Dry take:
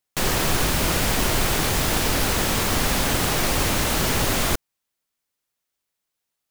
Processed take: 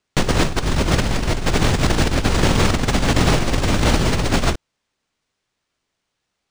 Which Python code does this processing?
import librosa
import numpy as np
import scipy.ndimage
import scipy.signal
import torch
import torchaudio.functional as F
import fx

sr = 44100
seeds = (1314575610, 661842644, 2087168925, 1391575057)

y = fx.low_shelf(x, sr, hz=440.0, db=8.5)
y = fx.over_compress(y, sr, threshold_db=-18.0, ratio=-0.5)
y = np.interp(np.arange(len(y)), np.arange(len(y))[::3], y[::3])
y = y * 10.0 ** (2.0 / 20.0)